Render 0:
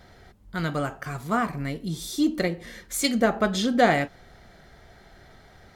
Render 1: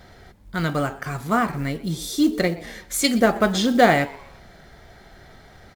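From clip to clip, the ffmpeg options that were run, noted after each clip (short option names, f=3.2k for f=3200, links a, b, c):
-filter_complex "[0:a]asplit=4[a][b][c][d];[b]adelay=123,afreqshift=130,volume=-21dB[e];[c]adelay=246,afreqshift=260,volume=-29.2dB[f];[d]adelay=369,afreqshift=390,volume=-37.4dB[g];[a][e][f][g]amix=inputs=4:normalize=0,acrusher=bits=7:mode=log:mix=0:aa=0.000001,volume=4dB"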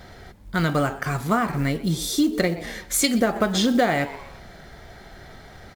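-af "acompressor=threshold=-20dB:ratio=6,volume=3.5dB"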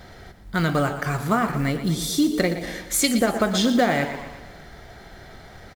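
-af "aecho=1:1:118|236|354|472|590|708:0.251|0.136|0.0732|0.0396|0.0214|0.0115"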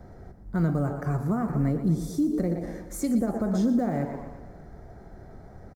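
-filter_complex "[0:a]firequalizer=gain_entry='entry(220,0);entry(3100,-28);entry(5500,-16)':delay=0.05:min_phase=1,acrossover=split=210|5600[a][b][c];[b]alimiter=limit=-21.5dB:level=0:latency=1:release=87[d];[a][d][c]amix=inputs=3:normalize=0"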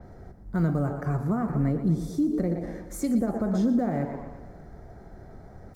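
-af "areverse,acompressor=mode=upward:threshold=-46dB:ratio=2.5,areverse,adynamicequalizer=threshold=0.00141:dfrequency=4700:dqfactor=0.7:tfrequency=4700:tqfactor=0.7:attack=5:release=100:ratio=0.375:range=3:mode=cutabove:tftype=highshelf"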